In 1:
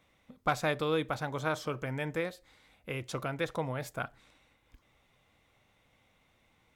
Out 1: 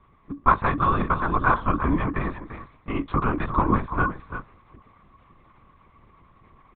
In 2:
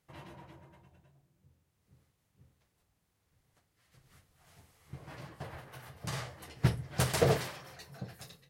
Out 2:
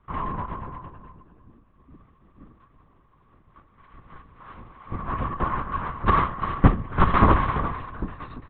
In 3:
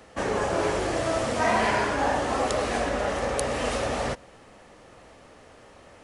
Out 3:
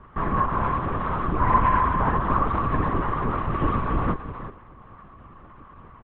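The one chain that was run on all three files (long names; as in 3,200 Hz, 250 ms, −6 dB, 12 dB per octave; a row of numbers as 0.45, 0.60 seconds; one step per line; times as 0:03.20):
in parallel at −0.5 dB: speech leveller within 5 dB 0.5 s
on the sum: pair of resonant band-passes 510 Hz, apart 2.1 octaves
frequency shifter +29 Hz
single-tap delay 343 ms −10.5 dB
linear-prediction vocoder at 8 kHz whisper
loudness normalisation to −24 LKFS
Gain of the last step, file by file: +18.5, +23.5, +8.0 decibels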